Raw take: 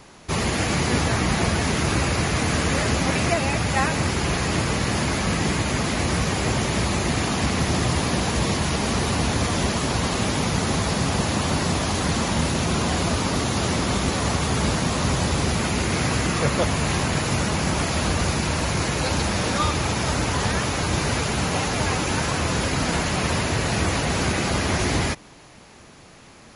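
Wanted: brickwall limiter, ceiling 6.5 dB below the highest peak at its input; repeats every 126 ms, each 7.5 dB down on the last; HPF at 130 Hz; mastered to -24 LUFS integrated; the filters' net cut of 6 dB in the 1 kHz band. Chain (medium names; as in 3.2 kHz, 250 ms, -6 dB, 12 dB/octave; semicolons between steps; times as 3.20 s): high-pass 130 Hz; peaking EQ 1 kHz -8 dB; peak limiter -16.5 dBFS; feedback delay 126 ms, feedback 42%, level -7.5 dB; trim +1 dB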